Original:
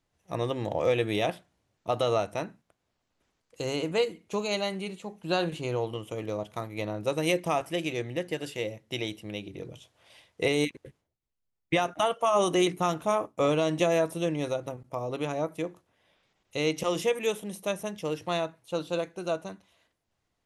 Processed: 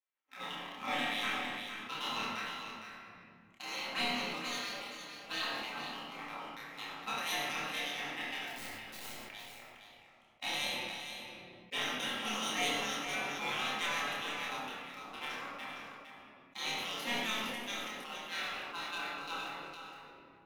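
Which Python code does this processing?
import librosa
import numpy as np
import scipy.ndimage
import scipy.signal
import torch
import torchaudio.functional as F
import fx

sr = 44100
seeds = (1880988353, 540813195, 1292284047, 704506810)

y = fx.wiener(x, sr, points=9)
y = fx.spec_gate(y, sr, threshold_db=-20, keep='weak')
y = scipy.signal.sosfilt(scipy.signal.butter(4, 150.0, 'highpass', fs=sr, output='sos'), y)
y = fx.peak_eq(y, sr, hz=8000.0, db=-11.5, octaves=0.54)
y = fx.overflow_wrap(y, sr, gain_db=42.0, at=(8.46, 9.14))
y = fx.leveller(y, sr, passes=2)
y = fx.doubler(y, sr, ms=28.0, db=-2.5)
y = y + 10.0 ** (-8.5 / 20.0) * np.pad(y, (int(461 * sr / 1000.0), 0))[:len(y)]
y = fx.room_shoebox(y, sr, seeds[0], volume_m3=840.0, walls='mixed', distance_m=2.1)
y = fx.sustainer(y, sr, db_per_s=24.0)
y = y * librosa.db_to_amplitude(-8.5)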